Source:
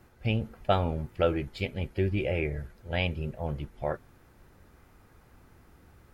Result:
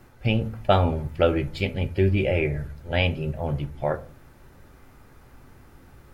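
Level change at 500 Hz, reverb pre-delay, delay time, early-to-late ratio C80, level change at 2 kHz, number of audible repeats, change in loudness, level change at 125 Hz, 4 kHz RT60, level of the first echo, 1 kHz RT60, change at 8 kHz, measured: +6.0 dB, 3 ms, no echo, 24.0 dB, +6.0 dB, no echo, +6.0 dB, +6.5 dB, 0.20 s, no echo, 0.40 s, no reading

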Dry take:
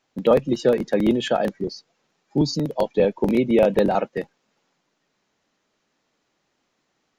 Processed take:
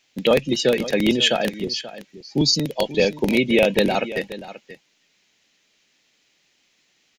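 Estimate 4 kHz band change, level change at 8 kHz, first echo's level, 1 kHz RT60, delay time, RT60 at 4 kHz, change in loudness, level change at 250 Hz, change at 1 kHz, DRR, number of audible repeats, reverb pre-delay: +12.5 dB, no reading, -15.0 dB, no reverb, 532 ms, no reverb, +1.0 dB, 0.0 dB, -1.5 dB, no reverb, 1, no reverb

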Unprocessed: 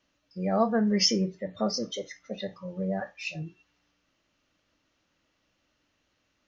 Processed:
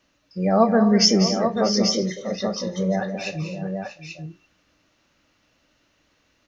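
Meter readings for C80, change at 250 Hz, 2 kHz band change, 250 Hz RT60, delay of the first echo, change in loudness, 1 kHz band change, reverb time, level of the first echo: no reverb, +8.5 dB, +6.0 dB, no reverb, 195 ms, +7.5 dB, +8.5 dB, no reverb, -10.0 dB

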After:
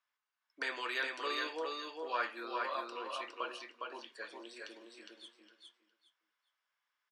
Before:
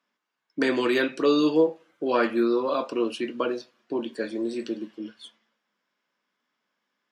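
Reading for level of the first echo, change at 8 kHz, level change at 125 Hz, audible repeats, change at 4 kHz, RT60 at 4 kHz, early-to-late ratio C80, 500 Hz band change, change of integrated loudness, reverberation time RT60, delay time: -3.5 dB, no reading, under -35 dB, 3, -7.0 dB, no reverb, no reverb, -19.0 dB, -14.0 dB, no reverb, 410 ms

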